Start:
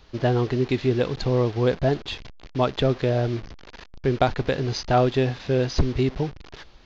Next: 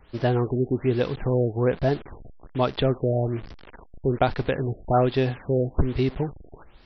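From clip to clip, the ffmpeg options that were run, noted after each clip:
-af "afftfilt=real='re*lt(b*sr/1024,730*pow(6100/730,0.5+0.5*sin(2*PI*1.2*pts/sr)))':imag='im*lt(b*sr/1024,730*pow(6100/730,0.5+0.5*sin(2*PI*1.2*pts/sr)))':win_size=1024:overlap=0.75,volume=-1dB"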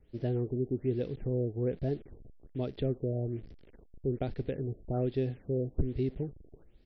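-af "firequalizer=gain_entry='entry(420,0);entry(1000,-21);entry(1900,-10)':delay=0.05:min_phase=1,volume=-8dB"

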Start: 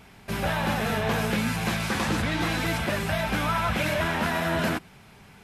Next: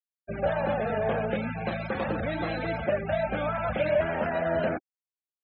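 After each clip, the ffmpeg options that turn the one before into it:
-af "bandreject=f=1k:w=16,afftfilt=real='re*gte(hypot(re,im),0.0447)':imag='im*gte(hypot(re,im),0.0447)':win_size=1024:overlap=0.75,equalizer=f=570:w=2:g=13,volume=-6dB"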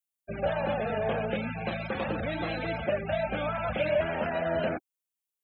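-af "aexciter=amount=1.1:drive=8:freq=2.5k,volume=-2dB"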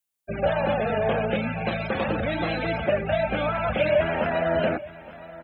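-af "aecho=1:1:869|1738|2607:0.126|0.0516|0.0212,volume=5.5dB"

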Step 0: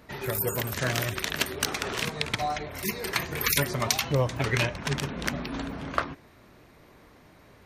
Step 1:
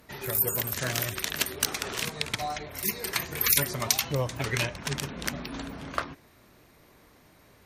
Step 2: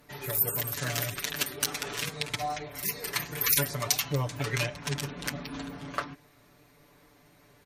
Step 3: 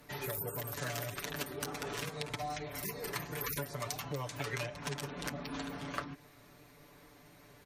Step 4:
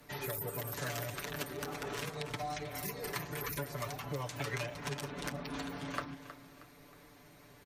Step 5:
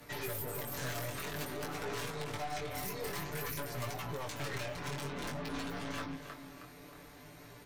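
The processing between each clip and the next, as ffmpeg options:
-af "aemphasis=mode=production:type=cd,volume=-3.5dB"
-af "aecho=1:1:6.9:0.81,volume=-4dB"
-filter_complex "[0:a]acrossover=split=380|1300[a][b][c];[a]acompressor=threshold=-44dB:ratio=4[d];[b]acompressor=threshold=-42dB:ratio=4[e];[c]acompressor=threshold=-43dB:ratio=4[f];[d][e][f]amix=inputs=3:normalize=0,volume=1dB"
-filter_complex "[0:a]acrossover=split=410|920|2700[a][b][c][d];[d]alimiter=level_in=4.5dB:limit=-24dB:level=0:latency=1:release=361,volume=-4.5dB[e];[a][b][c][e]amix=inputs=4:normalize=0,aecho=1:1:316|632|948|1264:0.224|0.0918|0.0376|0.0154"
-af "aeval=exprs='(tanh(126*val(0)+0.4)-tanh(0.4))/126':c=same,flanger=delay=17:depth=6.1:speed=0.52,volume=9dB"

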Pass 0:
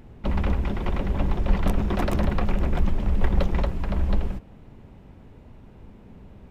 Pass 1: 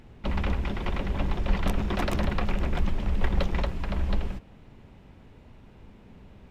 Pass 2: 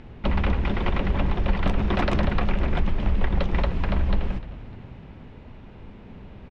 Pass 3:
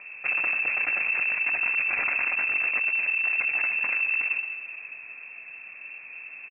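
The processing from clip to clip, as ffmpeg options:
-af "equalizer=f=3.6k:w=0.4:g=6.5,volume=-4dB"
-filter_complex "[0:a]lowpass=3.9k,acompressor=threshold=-25dB:ratio=3,asplit=5[a][b][c][d][e];[b]adelay=301,afreqshift=-65,volume=-17dB[f];[c]adelay=602,afreqshift=-130,volume=-23dB[g];[d]adelay=903,afreqshift=-195,volume=-29dB[h];[e]adelay=1204,afreqshift=-260,volume=-35.1dB[i];[a][f][g][h][i]amix=inputs=5:normalize=0,volume=7dB"
-filter_complex "[0:a]asplit=2[a][b];[b]adelay=23,volume=-12.5dB[c];[a][c]amix=inputs=2:normalize=0,volume=24dB,asoftclip=hard,volume=-24dB,lowpass=f=2.3k:t=q:w=0.5098,lowpass=f=2.3k:t=q:w=0.6013,lowpass=f=2.3k:t=q:w=0.9,lowpass=f=2.3k:t=q:w=2.563,afreqshift=-2700"

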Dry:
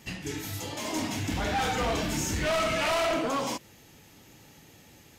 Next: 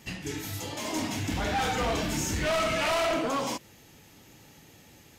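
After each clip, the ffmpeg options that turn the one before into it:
-af anull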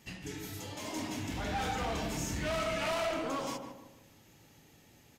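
-filter_complex "[0:a]asplit=2[a][b];[b]adelay=152,lowpass=f=1.2k:p=1,volume=-5dB,asplit=2[c][d];[d]adelay=152,lowpass=f=1.2k:p=1,volume=0.44,asplit=2[e][f];[f]adelay=152,lowpass=f=1.2k:p=1,volume=0.44,asplit=2[g][h];[h]adelay=152,lowpass=f=1.2k:p=1,volume=0.44,asplit=2[i][j];[j]adelay=152,lowpass=f=1.2k:p=1,volume=0.44[k];[a][c][e][g][i][k]amix=inputs=6:normalize=0,volume=-7.5dB"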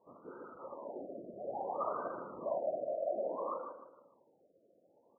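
-af "afftfilt=real='hypot(re,im)*cos(2*PI*random(0))':imag='hypot(re,im)*sin(2*PI*random(1))':win_size=512:overlap=0.75,highpass=470,equalizer=f=540:t=q:w=4:g=8,equalizer=f=790:t=q:w=4:g=-6,equalizer=f=1.2k:t=q:w=4:g=9,equalizer=f=2k:t=q:w=4:g=-5,lowpass=f=2.1k:w=0.5412,lowpass=f=2.1k:w=1.3066,afftfilt=real='re*lt(b*sr/1024,700*pow(1600/700,0.5+0.5*sin(2*PI*0.59*pts/sr)))':imag='im*lt(b*sr/1024,700*pow(1600/700,0.5+0.5*sin(2*PI*0.59*pts/sr)))':win_size=1024:overlap=0.75,volume=5dB"

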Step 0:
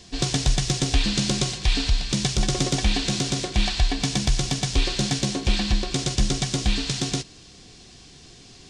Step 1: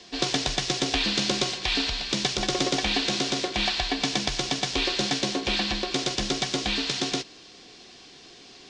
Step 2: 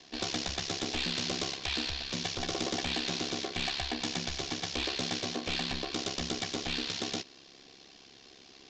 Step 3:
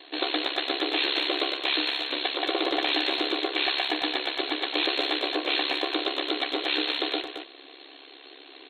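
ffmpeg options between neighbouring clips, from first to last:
-filter_complex "[0:a]acrossover=split=250 6000:gain=0.126 1 0.112[a][b][c];[a][b][c]amix=inputs=3:normalize=0,volume=2.5dB"
-af "aeval=exprs='val(0)*sin(2*PI*34*n/s)':c=same,aresample=16000,asoftclip=type=hard:threshold=-23dB,aresample=44100,volume=-3.5dB"
-filter_complex "[0:a]afftfilt=real='re*between(b*sr/4096,260,4300)':imag='im*between(b*sr/4096,260,4300)':win_size=4096:overlap=0.75,asplit=2[a][b];[b]adelay=220,highpass=300,lowpass=3.4k,asoftclip=type=hard:threshold=-29.5dB,volume=-7dB[c];[a][c]amix=inputs=2:normalize=0,volume=8.5dB"

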